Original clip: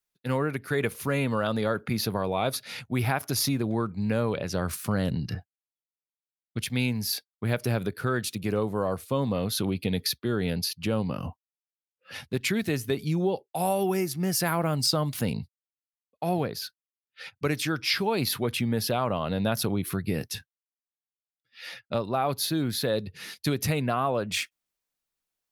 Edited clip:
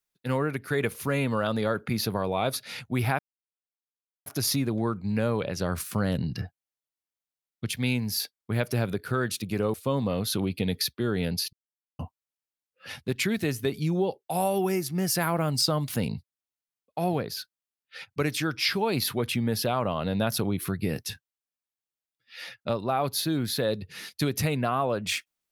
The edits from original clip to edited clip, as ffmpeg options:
-filter_complex "[0:a]asplit=5[s0][s1][s2][s3][s4];[s0]atrim=end=3.19,asetpts=PTS-STARTPTS,afade=t=out:st=3.186:d=0.004:c=hsin,apad=pad_dur=1.07[s5];[s1]atrim=start=3.19:end=8.672,asetpts=PTS-STARTPTS,afade=t=in:d=0.004:c=hsin[s6];[s2]atrim=start=8.988:end=10.78,asetpts=PTS-STARTPTS,afade=t=out:st=1.788:d=0.004:c=hsin[s7];[s3]atrim=start=10.78:end=11.24,asetpts=PTS-STARTPTS,volume=0[s8];[s4]atrim=start=11.24,asetpts=PTS-STARTPTS,afade=t=in:d=0.004:c=hsin[s9];[s5][s6]concat=n=2:v=0:a=1[s10];[s7][s8][s9]concat=n=3:v=0:a=1[s11];[s10][s11]acrossfade=d=0.004:c1=hsin:c2=hsin"

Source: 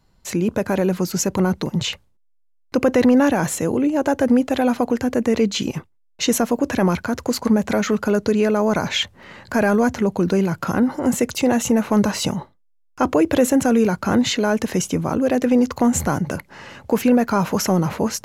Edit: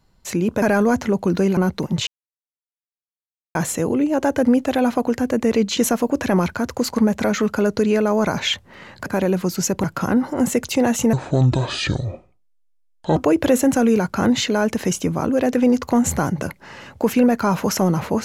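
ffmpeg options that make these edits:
-filter_complex "[0:a]asplit=10[s0][s1][s2][s3][s4][s5][s6][s7][s8][s9];[s0]atrim=end=0.622[s10];[s1]atrim=start=9.548:end=10.502[s11];[s2]atrim=start=1.398:end=1.9,asetpts=PTS-STARTPTS,afade=t=out:st=0.498:d=0.004:c=hsin[s12];[s3]atrim=start=1.9:end=3.38,asetpts=PTS-STARTPTS,volume=0[s13];[s4]atrim=start=3.38:end=5.602,asetpts=PTS-STARTPTS,afade=t=in:d=0.004:c=hsin[s14];[s5]atrim=start=6.258:end=9.552[s15];[s6]atrim=start=0.618:end=1.402[s16];[s7]atrim=start=10.498:end=11.794[s17];[s8]atrim=start=11.79:end=13.05,asetpts=PTS-STARTPTS,asetrate=27342,aresample=44100[s18];[s9]atrim=start=13.046[s19];[s10][s11]acrossfade=d=0.004:c1=hsin:c2=hsin[s20];[s12][s13][s14]concat=n=3:v=0:a=1[s21];[s20][s21]acrossfade=d=0.004:c1=hsin:c2=hsin[s22];[s22][s15]acrossfade=d=0.004:c1=hsin:c2=hsin[s23];[s23][s16]acrossfade=d=0.004:c1=hsin:c2=hsin[s24];[s24][s17]acrossfade=d=0.004:c1=hsin:c2=hsin[s25];[s25][s18]acrossfade=d=0.004:c1=hsin:c2=hsin[s26];[s26][s19]acrossfade=d=0.004:c1=hsin:c2=hsin"

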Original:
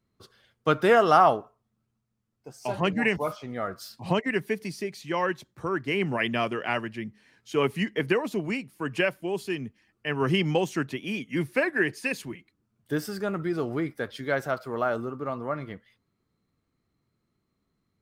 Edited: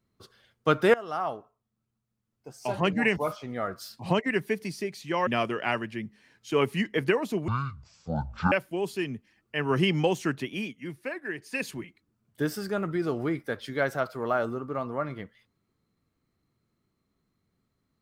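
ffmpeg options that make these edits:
-filter_complex "[0:a]asplit=7[s0][s1][s2][s3][s4][s5][s6];[s0]atrim=end=0.94,asetpts=PTS-STARTPTS,afade=t=out:st=0.936:d=0.004:c=hsin:silence=0.0891251[s7];[s1]atrim=start=0.94:end=5.272,asetpts=PTS-STARTPTS,afade=t=in:d=1.67:silence=0.0891251[s8];[s2]atrim=start=6.288:end=8.504[s9];[s3]atrim=start=8.5:end=9.03,asetpts=PTS-STARTPTS,asetrate=22491,aresample=44100,atrim=end_sample=45829,asetpts=PTS-STARTPTS[s10];[s4]atrim=start=9.026:end=11.31,asetpts=PTS-STARTPTS,afade=t=out:st=2.034:d=0.25:silence=0.316228[s11];[s5]atrim=start=11.31:end=11.92,asetpts=PTS-STARTPTS,volume=0.316[s12];[s6]atrim=start=11.92,asetpts=PTS-STARTPTS,afade=t=in:d=0.25:silence=0.316228[s13];[s7][s8]concat=n=2:v=0:a=1[s14];[s14][s9]acrossfade=d=0.004:c1=hsin:c2=hsin[s15];[s15][s10]acrossfade=d=0.004:c1=hsin:c2=hsin[s16];[s11][s12][s13]concat=n=3:v=0:a=1[s17];[s16][s17]acrossfade=d=0.004:c1=hsin:c2=hsin"

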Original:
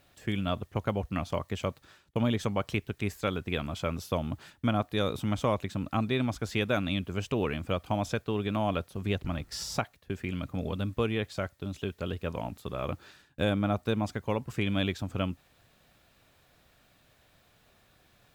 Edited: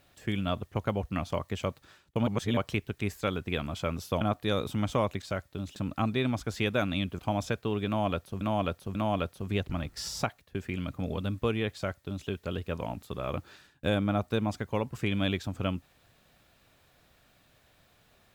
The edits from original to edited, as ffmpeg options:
-filter_complex "[0:a]asplit=9[s0][s1][s2][s3][s4][s5][s6][s7][s8];[s0]atrim=end=2.272[s9];[s1]atrim=start=2.268:end=2.572,asetpts=PTS-STARTPTS,areverse[s10];[s2]atrim=start=2.568:end=4.212[s11];[s3]atrim=start=4.698:end=5.712[s12];[s4]atrim=start=11.288:end=11.832[s13];[s5]atrim=start=5.708:end=7.142[s14];[s6]atrim=start=7.818:end=9.042[s15];[s7]atrim=start=8.498:end=9.042[s16];[s8]atrim=start=8.498[s17];[s9][s10]acrossfade=d=0.004:c1=hsin:c2=hsin[s18];[s18][s11]acrossfade=d=0.004:c1=hsin:c2=hsin[s19];[s19][s12]acrossfade=d=0.004:c1=hsin:c2=hsin[s20];[s20][s13]acrossfade=d=0.004:c1=hsin:c2=hsin[s21];[s21][s14]acrossfade=d=0.004:c1=hsin:c2=hsin[s22];[s22][s15]acrossfade=d=0.004:c1=hsin:c2=hsin[s23];[s23][s16]acrossfade=d=0.004:c1=hsin:c2=hsin[s24];[s24][s17]acrossfade=d=0.004:c1=hsin:c2=hsin"

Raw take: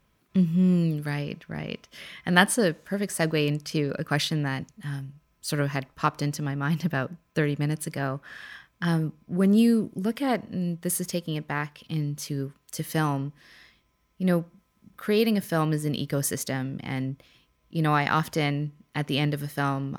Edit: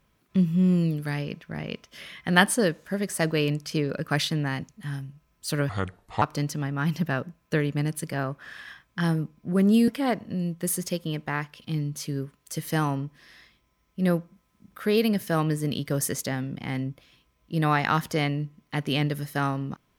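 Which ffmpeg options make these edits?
-filter_complex "[0:a]asplit=4[s0][s1][s2][s3];[s0]atrim=end=5.694[s4];[s1]atrim=start=5.69:end=6.06,asetpts=PTS-STARTPTS,asetrate=30870,aresample=44100[s5];[s2]atrim=start=6.056:end=9.722[s6];[s3]atrim=start=10.098[s7];[s4][s5]acrossfade=d=0.004:c1=hsin:c2=hsin[s8];[s8][s6]acrossfade=d=0.004:c1=hsin:c2=hsin[s9];[s9][s7]acrossfade=d=0.004:c1=hsin:c2=hsin"

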